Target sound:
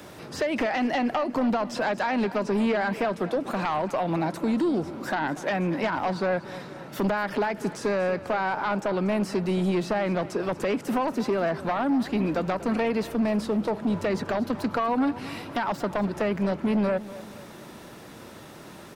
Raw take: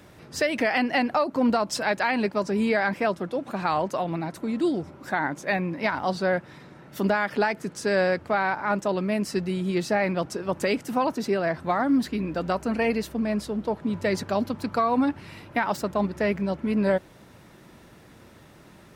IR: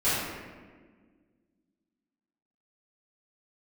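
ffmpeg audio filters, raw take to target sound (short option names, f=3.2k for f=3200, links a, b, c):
-filter_complex "[0:a]equalizer=f=2k:t=o:w=0.77:g=-3.5,acrossover=split=2900[a][b];[b]acompressor=threshold=-49dB:ratio=4:attack=1:release=60[c];[a][c]amix=inputs=2:normalize=0,lowshelf=f=130:g=-12,asplit=2[d][e];[e]alimiter=limit=-23dB:level=0:latency=1:release=263,volume=-1.5dB[f];[d][f]amix=inputs=2:normalize=0,acrossover=split=210[g][h];[h]acompressor=threshold=-24dB:ratio=6[i];[g][i]amix=inputs=2:normalize=0,aeval=exprs='0.168*sin(PI/2*1.58*val(0)/0.168)':c=same,asplit=2[j][k];[k]aecho=0:1:238|476|714|952|1190:0.15|0.0763|0.0389|0.0198|0.0101[l];[j][l]amix=inputs=2:normalize=0,volume=-4.5dB"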